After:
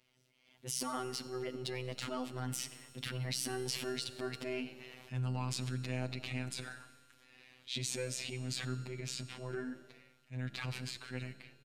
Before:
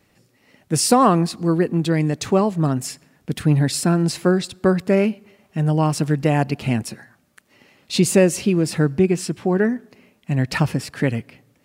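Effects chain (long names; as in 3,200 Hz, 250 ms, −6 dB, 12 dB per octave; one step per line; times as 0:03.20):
source passing by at 0:04.61, 35 m/s, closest 22 metres
parametric band 3,300 Hz +10.5 dB 1.5 octaves
downward compressor 10 to 1, threshold −34 dBFS, peak gain reduction 22 dB
transient designer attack −11 dB, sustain +6 dB
phases set to zero 127 Hz
tuned comb filter 140 Hz, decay 1.9 s, mix 70%
echo with shifted repeats 91 ms, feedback 63%, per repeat +74 Hz, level −24 dB
level +12.5 dB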